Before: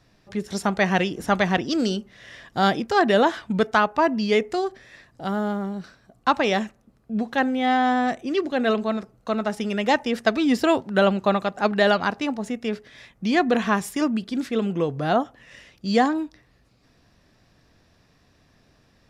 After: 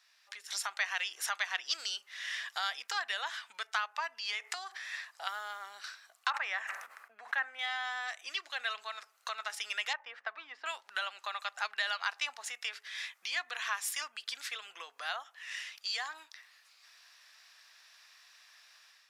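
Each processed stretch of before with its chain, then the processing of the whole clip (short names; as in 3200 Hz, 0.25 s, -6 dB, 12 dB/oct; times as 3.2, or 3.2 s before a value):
4.18–5.27 HPF 370 Hz 6 dB/oct + bell 860 Hz +6 dB 1.6 oct + compressor, threshold -29 dBFS
6.3–7.59 resonant high shelf 2600 Hz -11 dB, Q 1.5 + sustainer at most 58 dB/s
9.93–10.66 LPF 1400 Hz + de-hum 271.2 Hz, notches 4
whole clip: compressor 6:1, threshold -31 dBFS; Bessel high-pass 1700 Hz, order 4; AGC gain up to 8 dB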